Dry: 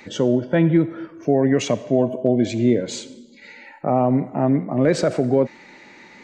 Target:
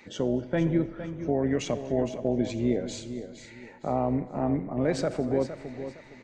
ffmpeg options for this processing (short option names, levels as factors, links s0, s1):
-filter_complex "[0:a]asplit=2[s0][s1];[s1]asplit=3[s2][s3][s4];[s2]adelay=240,afreqshift=-130,volume=0.0708[s5];[s3]adelay=480,afreqshift=-260,volume=0.0367[s6];[s4]adelay=720,afreqshift=-390,volume=0.0191[s7];[s5][s6][s7]amix=inputs=3:normalize=0[s8];[s0][s8]amix=inputs=2:normalize=0,tremolo=f=190:d=0.4,asplit=2[s9][s10];[s10]aecho=0:1:462|924|1386:0.282|0.0789|0.0221[s11];[s9][s11]amix=inputs=2:normalize=0,volume=0.447"